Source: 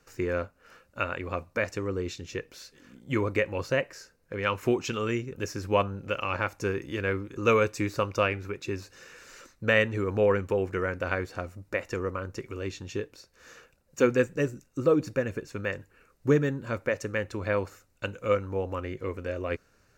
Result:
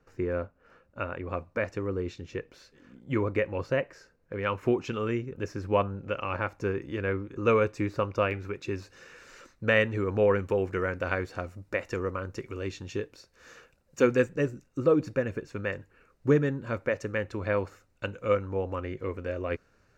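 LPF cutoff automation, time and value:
LPF 6 dB/oct
1000 Hz
from 1.28 s 1700 Hz
from 8.31 s 3900 Hz
from 10.39 s 6400 Hz
from 14.29 s 3300 Hz

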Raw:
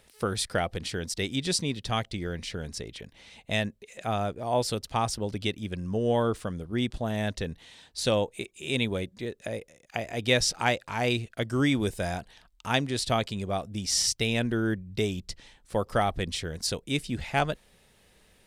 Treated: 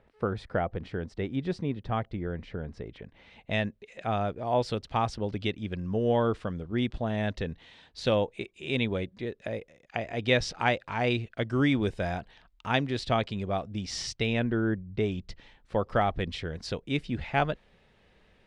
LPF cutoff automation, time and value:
2.7 s 1400 Hz
3.69 s 3300 Hz
14.2 s 3300 Hz
14.86 s 1400 Hz
15.15 s 3000 Hz

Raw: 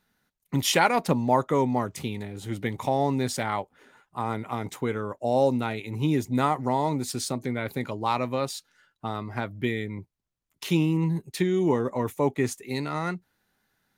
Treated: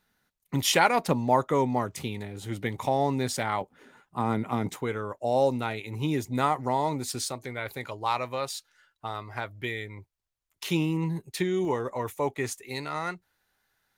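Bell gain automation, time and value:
bell 210 Hz 1.6 oct
-3 dB
from 3.61 s +6 dB
from 4.76 s -5.5 dB
from 7.25 s -14 dB
from 10.64 s -5 dB
from 11.65 s -11 dB

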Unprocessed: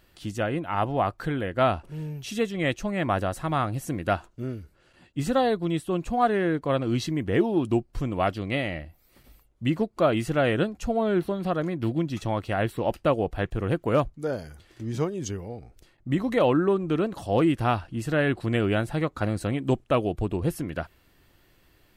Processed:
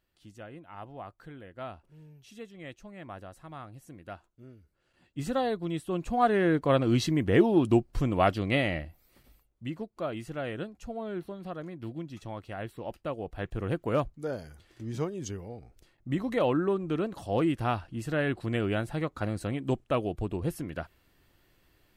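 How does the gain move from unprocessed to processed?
4.55 s -18 dB
5.23 s -6 dB
5.75 s -6 dB
6.57 s +1 dB
8.77 s +1 dB
9.74 s -12 dB
13.16 s -12 dB
13.57 s -5 dB

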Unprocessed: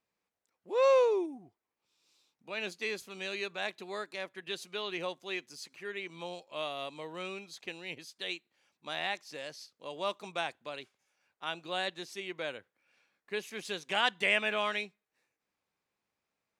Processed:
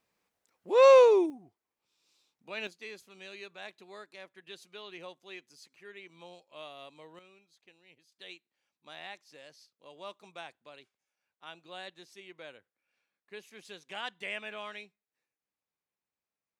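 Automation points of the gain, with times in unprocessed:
+6.5 dB
from 1.3 s -1 dB
from 2.67 s -9 dB
from 7.19 s -19 dB
from 8.12 s -10 dB

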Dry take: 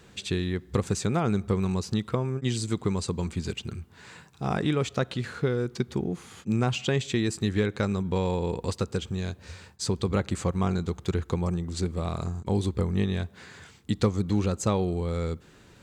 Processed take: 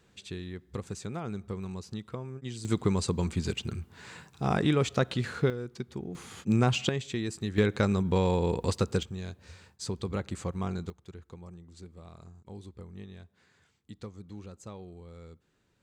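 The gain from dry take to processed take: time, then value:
-11 dB
from 2.65 s +0.5 dB
from 5.5 s -9 dB
from 6.15 s +1 dB
from 6.89 s -6.5 dB
from 7.58 s +1 dB
from 9.03 s -7 dB
from 10.9 s -19 dB

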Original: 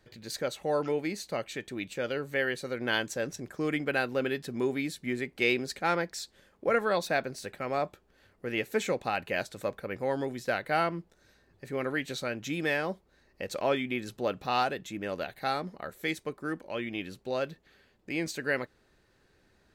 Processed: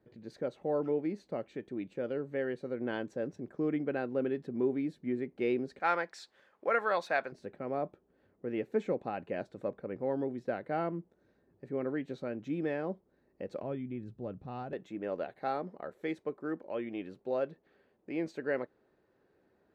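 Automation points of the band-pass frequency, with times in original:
band-pass, Q 0.76
290 Hz
from 5.8 s 1100 Hz
from 7.32 s 290 Hz
from 13.62 s 110 Hz
from 14.73 s 450 Hz

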